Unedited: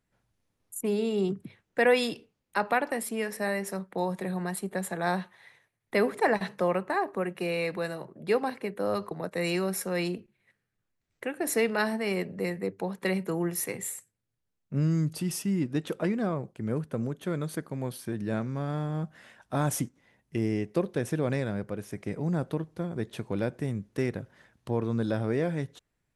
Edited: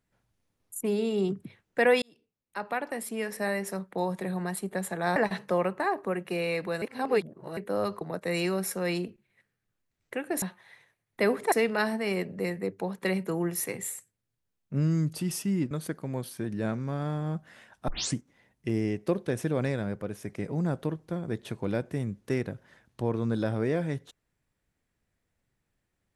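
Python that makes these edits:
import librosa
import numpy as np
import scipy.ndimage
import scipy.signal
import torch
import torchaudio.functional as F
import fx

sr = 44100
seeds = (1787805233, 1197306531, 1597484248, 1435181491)

y = fx.edit(x, sr, fx.fade_in_span(start_s=2.02, length_s=1.38),
    fx.move(start_s=5.16, length_s=1.1, to_s=11.52),
    fx.reverse_span(start_s=7.92, length_s=0.75),
    fx.cut(start_s=15.71, length_s=1.68),
    fx.tape_start(start_s=19.56, length_s=0.27), tone=tone)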